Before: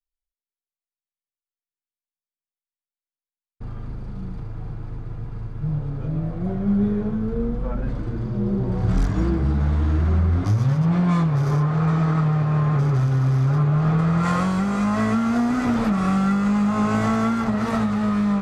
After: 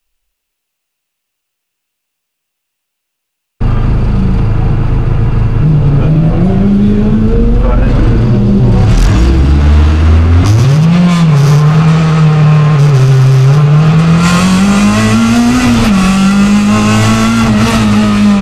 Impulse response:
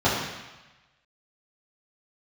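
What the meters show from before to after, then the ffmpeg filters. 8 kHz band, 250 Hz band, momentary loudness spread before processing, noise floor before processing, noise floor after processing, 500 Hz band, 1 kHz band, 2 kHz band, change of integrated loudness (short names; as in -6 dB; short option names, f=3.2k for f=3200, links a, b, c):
n/a, +13.0 dB, 15 LU, under -85 dBFS, -72 dBFS, +13.0 dB, +11.5 dB, +15.5 dB, +13.5 dB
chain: -filter_complex "[0:a]equalizer=f=2.7k:w=4.3:g=8.5,acrossover=split=150|3000[a][b][c];[b]acompressor=threshold=-33dB:ratio=6[d];[a][d][c]amix=inputs=3:normalize=0,apsyclip=26.5dB,asplit=2[e][f];[f]aecho=0:1:203:0.211[g];[e][g]amix=inputs=2:normalize=0,volume=-3dB"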